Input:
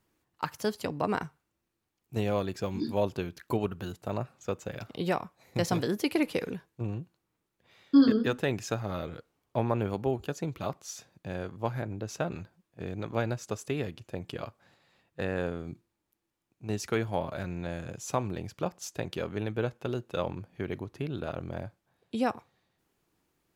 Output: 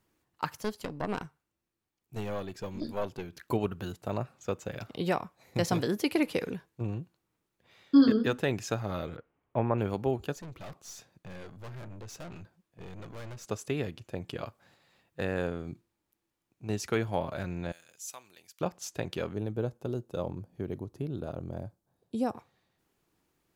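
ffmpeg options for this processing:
ffmpeg -i in.wav -filter_complex "[0:a]asettb=1/sr,asplit=3[link_01][link_02][link_03];[link_01]atrim=end=0.594[link_04];[link_02]atrim=start=0.59:end=3.33,asetpts=PTS-STARTPTS,afade=type=in:duration=0.004:curve=qsin,afade=type=out:start_time=2.736:duration=0.004:curve=qsin,aeval=exprs='(tanh(14.1*val(0)+0.75)-tanh(0.75))/14.1':channel_layout=same[link_05];[link_03]atrim=start=3.326[link_06];[link_04][link_05]acrossfade=duration=0.004:curve1=hsin:curve2=qsin[link_07];[link_07][link_06]acrossfade=duration=0.004:curve1=qsin:curve2=hsin,asettb=1/sr,asplit=3[link_08][link_09][link_10];[link_08]atrim=end=9.164[link_11];[link_09]atrim=start=9.16:end=9.78,asetpts=PTS-STARTPTS,afade=type=in:duration=0.004:curve=qsin,afade=type=out:start_time=0.616:duration=0.004:curve=qsin,lowpass=frequency=2600:width=0.5412,lowpass=frequency=2600:width=1.3066[link_12];[link_10]atrim=start=9.776[link_13];[link_11][link_12]acrossfade=duration=0.004:curve1=hsin:curve2=qsin[link_14];[link_14][link_13]acrossfade=duration=0.004:curve1=qsin:curve2=hsin,asettb=1/sr,asplit=3[link_15][link_16][link_17];[link_15]atrim=end=10.354[link_18];[link_16]atrim=start=10.35:end=13.46,asetpts=PTS-STARTPTS,afade=type=in:duration=0.004:curve=qsin,afade=type=out:start_time=3.106:duration=0.004:curve=qsin,aeval=exprs='(tanh(112*val(0)+0.4)-tanh(0.4))/112':channel_layout=same[link_19];[link_17]atrim=start=13.456[link_20];[link_18][link_19]acrossfade=duration=0.004:curve1=hsin:curve2=qsin[link_21];[link_21][link_20]acrossfade=duration=0.004:curve1=qsin:curve2=hsin,asettb=1/sr,asplit=3[link_22][link_23][link_24];[link_22]atrim=end=14.464[link_25];[link_23]atrim=start=14.46:end=15.47,asetpts=PTS-STARTPTS,afade=type=in:duration=0.004:curve=qsin,afade=type=out:start_time=1.006:duration=0.004:curve=qsin,highshelf=frequency=8500:gain=5.5[link_26];[link_24]atrim=start=15.466[link_27];[link_25][link_26]acrossfade=duration=0.004:curve1=hsin:curve2=qsin[link_28];[link_28][link_27]acrossfade=duration=0.004:curve1=qsin:curve2=hsin,asettb=1/sr,asplit=3[link_29][link_30][link_31];[link_29]atrim=end=17.724[link_32];[link_30]atrim=start=17.72:end=18.61,asetpts=PTS-STARTPTS,afade=type=in:duration=0.004:curve=qsin,afade=type=out:start_time=0.886:duration=0.004:curve=qsin,aderivative[link_33];[link_31]atrim=start=18.606[link_34];[link_32][link_33]acrossfade=duration=0.004:curve1=hsin:curve2=qsin[link_35];[link_35][link_34]acrossfade=duration=0.004:curve1=qsin:curve2=hsin,asettb=1/sr,asplit=3[link_36][link_37][link_38];[link_36]atrim=end=19.334[link_39];[link_37]atrim=start=19.33:end=22.35,asetpts=PTS-STARTPTS,afade=type=in:duration=0.004:curve=qsin,afade=type=out:start_time=3.016:duration=0.004:curve=qsin,equalizer=frequency=2200:width=0.62:gain=-13.5[link_40];[link_38]atrim=start=22.346[link_41];[link_39][link_40]acrossfade=duration=0.004:curve1=hsin:curve2=qsin[link_42];[link_42][link_41]acrossfade=duration=0.004:curve1=qsin:curve2=hsin" out.wav

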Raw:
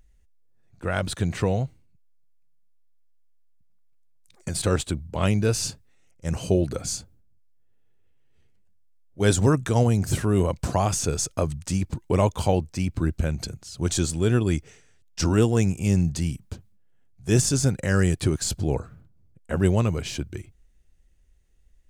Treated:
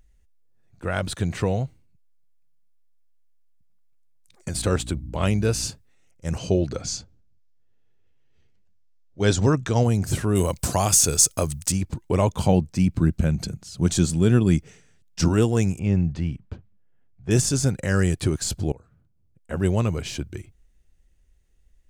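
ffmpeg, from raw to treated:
ffmpeg -i in.wav -filter_complex "[0:a]asettb=1/sr,asplit=3[link_01][link_02][link_03];[link_01]atrim=end=4.544[link_04];[link_02]atrim=start=4.54:end=5.67,asetpts=PTS-STARTPTS,afade=type=in:duration=0.004:curve=qsin,afade=type=out:start_time=1.126:duration=0.004:curve=qsin,aeval=exprs='val(0)+0.0178*(sin(2*PI*60*n/s)+sin(2*PI*2*60*n/s)/2+sin(2*PI*3*60*n/s)/3+sin(2*PI*4*60*n/s)/4+sin(2*PI*5*60*n/s)/5)':channel_layout=same[link_05];[link_03]atrim=start=5.666[link_06];[link_04][link_05]acrossfade=duration=0.004:curve1=hsin:curve2=qsin[link_07];[link_07][link_06]acrossfade=duration=0.004:curve1=qsin:curve2=hsin,asettb=1/sr,asplit=3[link_08][link_09][link_10];[link_08]atrim=end=6.384[link_11];[link_09]atrim=start=6.38:end=9.84,asetpts=PTS-STARTPTS,afade=type=in:duration=0.004:curve=qsin,afade=type=out:start_time=3.456:duration=0.004:curve=qsin,highshelf=frequency=7900:width_type=q:width=1.5:gain=-11[link_12];[link_10]atrim=start=9.836[link_13];[link_11][link_12]acrossfade=duration=0.004:curve1=hsin:curve2=qsin[link_14];[link_14][link_13]acrossfade=duration=0.004:curve1=qsin:curve2=hsin,asettb=1/sr,asplit=3[link_15][link_16][link_17];[link_15]atrim=end=10.354[link_18];[link_16]atrim=start=10.35:end=11.72,asetpts=PTS-STARTPTS,afade=type=in:duration=0.004:curve=qsin,afade=type=out:start_time=1.366:duration=0.004:curve=qsin,aemphasis=mode=production:type=75kf[link_19];[link_17]atrim=start=11.716[link_20];[link_18][link_19]acrossfade=duration=0.004:curve1=hsin:curve2=qsin[link_21];[link_21][link_20]acrossfade=duration=0.004:curve1=qsin:curve2=hsin,asettb=1/sr,asplit=3[link_22][link_23][link_24];[link_22]atrim=end=12.274[link_25];[link_23]atrim=start=12.27:end=15.28,asetpts=PTS-STARTPTS,afade=type=in:duration=0.004:curve=qsin,afade=type=out:start_time=3.006:duration=0.004:curve=qsin,equalizer=frequency=180:width=1.5:gain=8.5[link_26];[link_24]atrim=start=15.276[link_27];[link_25][link_26]acrossfade=duration=0.004:curve1=hsin:curve2=qsin[link_28];[link_28][link_27]acrossfade=duration=0.004:curve1=qsin:curve2=hsin,asettb=1/sr,asplit=3[link_29][link_30][link_31];[link_29]atrim=end=15.794[link_32];[link_30]atrim=start=15.79:end=17.31,asetpts=PTS-STARTPTS,afade=type=in:duration=0.004:curve=qsin,afade=type=out:start_time=1.516:duration=0.004:curve=qsin,lowpass=2500[link_33];[link_31]atrim=start=17.306[link_34];[link_32][link_33]acrossfade=duration=0.004:curve1=hsin:curve2=qsin[link_35];[link_35][link_34]acrossfade=duration=0.004:curve1=qsin:curve2=hsin,asplit=2[link_36][link_37];[link_36]atrim=end=18.72,asetpts=PTS-STARTPTS,afade=type=out:start_time=18.716:duration=0.004:curve=hsin:silence=0.0668344[link_38];[link_37]atrim=start=18.72,asetpts=PTS-STARTPTS,afade=type=in:duration=1.14:silence=0.0668344[link_39];[link_38][link_39]concat=n=2:v=0:a=1" out.wav

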